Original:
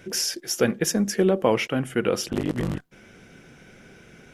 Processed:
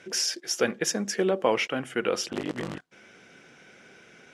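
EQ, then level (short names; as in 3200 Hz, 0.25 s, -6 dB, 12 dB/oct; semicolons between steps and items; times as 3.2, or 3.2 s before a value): HPF 510 Hz 6 dB/oct; LPF 7800 Hz 12 dB/oct; 0.0 dB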